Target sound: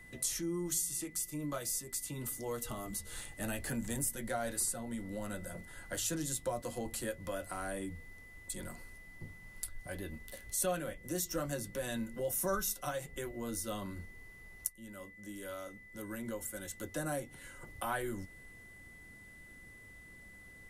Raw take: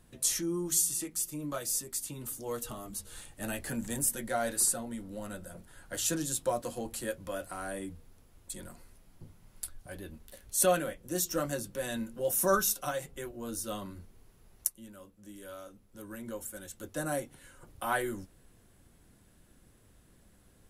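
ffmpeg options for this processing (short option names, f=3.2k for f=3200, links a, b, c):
-filter_complex "[0:a]aeval=exprs='val(0)+0.00158*sin(2*PI*2000*n/s)':c=same,acrossover=split=120[a][b];[b]acompressor=threshold=-42dB:ratio=2[c];[a][c]amix=inputs=2:normalize=0,volume=2.5dB"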